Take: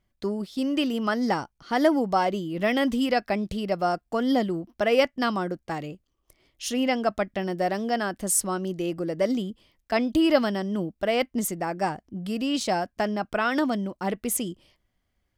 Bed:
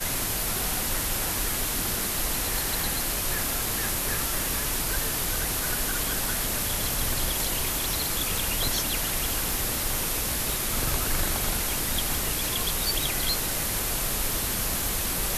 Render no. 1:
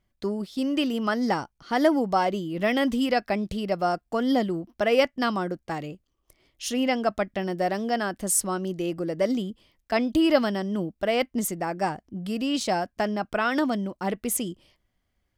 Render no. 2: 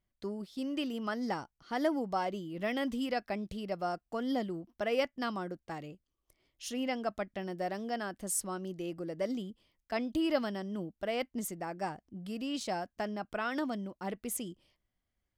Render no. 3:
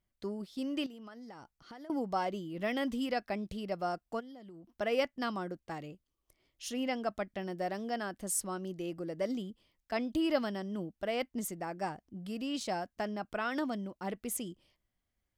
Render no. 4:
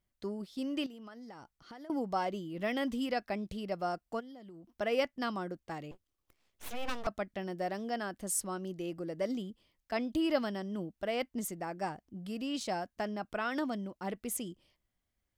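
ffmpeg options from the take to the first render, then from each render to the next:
ffmpeg -i in.wav -af anull out.wav
ffmpeg -i in.wav -af "volume=-10dB" out.wav
ffmpeg -i in.wav -filter_complex "[0:a]asettb=1/sr,asplit=3[link_01][link_02][link_03];[link_01]atrim=end=0.864[link_04];[link_02]atrim=start=0.86:end=1.9,asetpts=PTS-STARTPTS,afade=type=in:duration=0.004:curve=qsin,afade=type=out:start_time=1.036:duration=0.004:curve=qsin,acompressor=threshold=-45dB:ratio=16:attack=3.2:release=140:knee=1:detection=peak[link_05];[link_03]atrim=start=1.896[link_06];[link_04][link_05]acrossfade=duration=0.004:curve1=hsin:curve2=qsin[link_07];[link_07][link_06]acrossfade=duration=0.004:curve1=qsin:curve2=hsin,asplit=3[link_08][link_09][link_10];[link_08]afade=type=out:start_time=4.19:duration=0.02[link_11];[link_09]acompressor=threshold=-47dB:ratio=10:attack=3.2:release=140:knee=1:detection=peak,afade=type=in:start_time=4.19:duration=0.02,afade=type=out:start_time=4.74:duration=0.02[link_12];[link_10]afade=type=in:start_time=4.74:duration=0.02[link_13];[link_11][link_12][link_13]amix=inputs=3:normalize=0" out.wav
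ffmpeg -i in.wav -filter_complex "[0:a]asettb=1/sr,asplit=3[link_01][link_02][link_03];[link_01]atrim=end=5.914[link_04];[link_02]atrim=start=5.91:end=7.07,asetpts=PTS-STARTPTS,afade=type=in:duration=0.004:curve=qsin,afade=type=out:start_time=1.156:duration=0.004:curve=qsin,aeval=exprs='abs(val(0))':channel_layout=same[link_05];[link_03]atrim=start=7.066[link_06];[link_04][link_05]acrossfade=duration=0.004:curve1=hsin:curve2=qsin[link_07];[link_07][link_06]acrossfade=duration=0.004:curve1=qsin:curve2=hsin" out.wav

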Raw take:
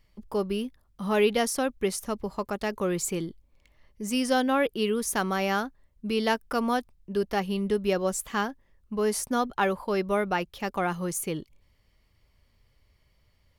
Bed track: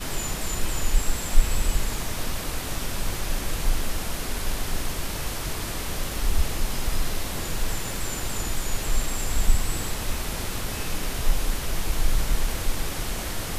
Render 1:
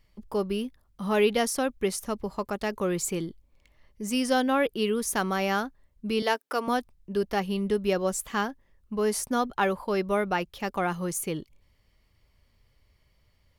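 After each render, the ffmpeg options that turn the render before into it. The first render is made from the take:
ffmpeg -i in.wav -filter_complex "[0:a]asettb=1/sr,asplit=3[link_01][link_02][link_03];[link_01]atrim=end=6.224[link_04];[link_02]atrim=start=6.22:end=6.68,asetpts=PTS-STARTPTS,afade=type=in:duration=0.004:curve=qsin,afade=type=out:start_time=0.456:duration=0.004:curve=qsin,highpass=frequency=300:width=0.5412,highpass=frequency=300:width=1.3066[link_05];[link_03]atrim=start=6.676[link_06];[link_04][link_05]acrossfade=duration=0.004:curve1=hsin:curve2=qsin[link_07];[link_07][link_06]acrossfade=duration=0.004:curve1=qsin:curve2=hsin" out.wav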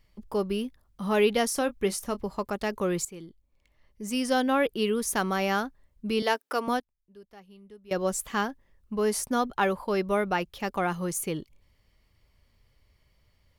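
ffmpeg -i in.wav -filter_complex "[0:a]asettb=1/sr,asplit=3[link_01][link_02][link_03];[link_01]atrim=end=1.504[link_04];[link_02]atrim=start=1.5:end=2.23,asetpts=PTS-STARTPTS,afade=type=in:duration=0.004:curve=qsin,afade=type=out:start_time=0.726:duration=0.004:curve=qsin,asplit=2[link_05][link_06];[link_06]adelay=25,volume=-13.5dB[link_07];[link_05][link_07]amix=inputs=2:normalize=0,atrim=end_sample=32193[link_08];[link_03]atrim=start=2.226[link_09];[link_04][link_08]acrossfade=duration=0.004:curve1=hsin:curve2=qsin[link_10];[link_10][link_09]acrossfade=duration=0.004:curve1=qsin:curve2=hsin,asplit=4[link_11][link_12][link_13][link_14];[link_11]atrim=end=3.05,asetpts=PTS-STARTPTS,afade=type=out:start_time=3.046:duration=0.004:curve=hsin:silence=0.177828[link_15];[link_12]atrim=start=3.05:end=6.8,asetpts=PTS-STARTPTS,afade=type=in:duration=1.47:silence=0.177828,afade=type=out:start_time=3.51:duration=0.24:curve=log:silence=0.0707946[link_16];[link_13]atrim=start=6.8:end=7.91,asetpts=PTS-STARTPTS,volume=-23dB[link_17];[link_14]atrim=start=7.91,asetpts=PTS-STARTPTS,afade=type=in:duration=0.24:curve=log:silence=0.0707946[link_18];[link_15][link_16][link_17][link_18]concat=n=4:v=0:a=1" out.wav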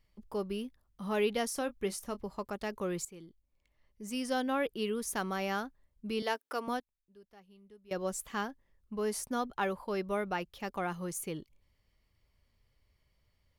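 ffmpeg -i in.wav -af "volume=-7.5dB" out.wav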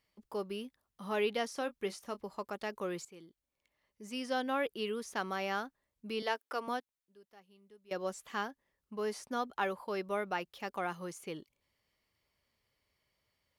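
ffmpeg -i in.wav -filter_complex "[0:a]acrossover=split=5600[link_01][link_02];[link_02]acompressor=threshold=-56dB:ratio=4:attack=1:release=60[link_03];[link_01][link_03]amix=inputs=2:normalize=0,highpass=frequency=340:poles=1" out.wav

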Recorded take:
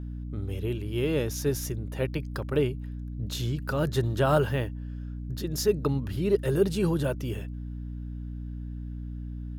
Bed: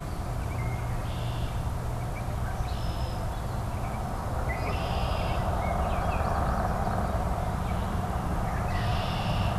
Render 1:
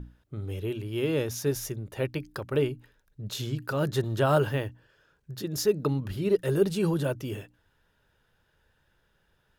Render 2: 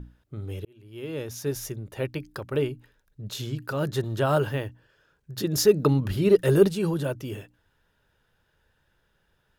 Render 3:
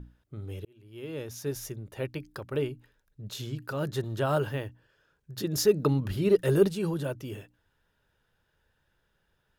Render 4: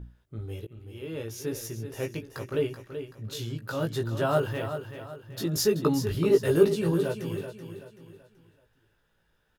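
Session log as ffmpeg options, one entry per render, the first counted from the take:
ffmpeg -i in.wav -af "bandreject=frequency=60:width_type=h:width=6,bandreject=frequency=120:width_type=h:width=6,bandreject=frequency=180:width_type=h:width=6,bandreject=frequency=240:width_type=h:width=6,bandreject=frequency=300:width_type=h:width=6" out.wav
ffmpeg -i in.wav -filter_complex "[0:a]asplit=3[link_01][link_02][link_03];[link_01]afade=type=out:start_time=5.36:duration=0.02[link_04];[link_02]acontrast=59,afade=type=in:start_time=5.36:duration=0.02,afade=type=out:start_time=6.67:duration=0.02[link_05];[link_03]afade=type=in:start_time=6.67:duration=0.02[link_06];[link_04][link_05][link_06]amix=inputs=3:normalize=0,asplit=2[link_07][link_08];[link_07]atrim=end=0.65,asetpts=PTS-STARTPTS,afade=type=out:start_time=0.646:duration=0.004:curve=hsin[link_09];[link_08]atrim=start=0.65,asetpts=PTS-STARTPTS,afade=type=in:duration=0.99[link_10];[link_09][link_10]concat=n=2:v=0:a=1" out.wav
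ffmpeg -i in.wav -af "volume=-4dB" out.wav
ffmpeg -i in.wav -filter_complex "[0:a]asplit=2[link_01][link_02];[link_02]adelay=18,volume=-4dB[link_03];[link_01][link_03]amix=inputs=2:normalize=0,asplit=2[link_04][link_05];[link_05]aecho=0:1:381|762|1143|1524:0.335|0.131|0.0509|0.0199[link_06];[link_04][link_06]amix=inputs=2:normalize=0" out.wav

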